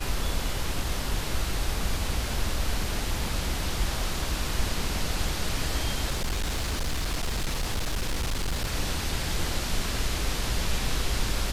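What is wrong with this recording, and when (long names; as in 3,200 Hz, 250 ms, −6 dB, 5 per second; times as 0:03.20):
0:06.11–0:08.75: clipping −24 dBFS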